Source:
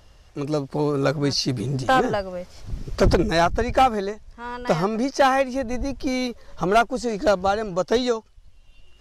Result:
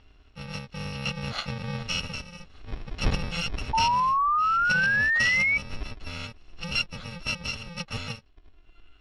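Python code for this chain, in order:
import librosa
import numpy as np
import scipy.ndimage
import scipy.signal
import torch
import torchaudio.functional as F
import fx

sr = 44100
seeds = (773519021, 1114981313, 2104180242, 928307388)

y = fx.bit_reversed(x, sr, seeds[0], block=128)
y = fx.ladder_lowpass(y, sr, hz=4300.0, resonance_pct=30)
y = fx.spec_paint(y, sr, seeds[1], shape='rise', start_s=3.73, length_s=1.85, low_hz=880.0, high_hz=2300.0, level_db=-26.0)
y = y * librosa.db_to_amplitude(3.0)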